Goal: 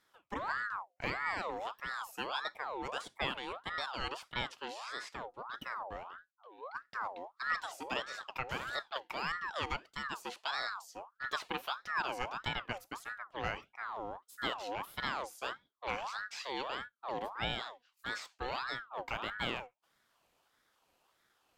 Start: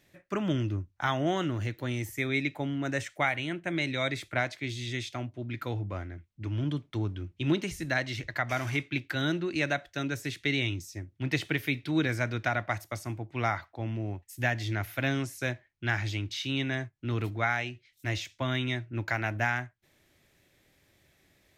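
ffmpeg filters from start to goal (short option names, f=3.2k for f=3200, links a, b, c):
-filter_complex "[0:a]asplit=3[a][b][c];[a]afade=t=out:st=6.3:d=0.02[d];[b]asplit=3[e][f][g];[e]bandpass=f=270:t=q:w=8,volume=0dB[h];[f]bandpass=f=2.29k:t=q:w=8,volume=-6dB[i];[g]bandpass=f=3.01k:t=q:w=8,volume=-9dB[j];[h][i][j]amix=inputs=3:normalize=0,afade=t=in:st=6.3:d=0.02,afade=t=out:st=6.74:d=0.02[k];[c]afade=t=in:st=6.74:d=0.02[l];[d][k][l]amix=inputs=3:normalize=0,aeval=exprs='val(0)*sin(2*PI*1100*n/s+1100*0.45/1.6*sin(2*PI*1.6*n/s))':c=same,volume=-5.5dB"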